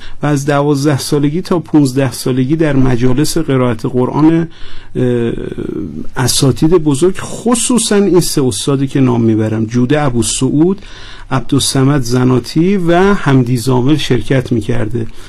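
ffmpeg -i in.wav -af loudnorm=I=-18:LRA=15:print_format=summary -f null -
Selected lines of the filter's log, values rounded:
Input Integrated:    -12.4 LUFS
Input True Peak:      -1.0 dBTP
Input LRA:             1.4 LU
Input Threshold:     -22.6 LUFS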